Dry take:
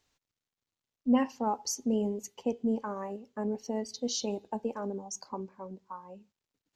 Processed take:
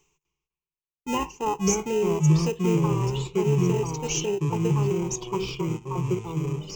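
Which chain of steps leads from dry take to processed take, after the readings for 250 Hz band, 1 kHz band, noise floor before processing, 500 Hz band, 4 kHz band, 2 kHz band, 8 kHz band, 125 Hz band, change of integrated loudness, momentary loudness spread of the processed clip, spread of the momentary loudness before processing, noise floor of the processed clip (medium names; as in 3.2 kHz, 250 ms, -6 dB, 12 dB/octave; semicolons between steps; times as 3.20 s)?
+5.5 dB, +6.0 dB, under -85 dBFS, +9.0 dB, +6.0 dB, +11.0 dB, +8.0 dB, no reading, +8.0 dB, 7 LU, 15 LU, under -85 dBFS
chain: in parallel at -6.5 dB: sample-and-hold 39×; on the sum: gate -48 dBFS, range -29 dB; ever faster or slower copies 251 ms, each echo -4 st, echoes 3; reverse; upward compressor, threshold -36 dBFS; reverse; rippled EQ curve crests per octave 0.73, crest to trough 18 dB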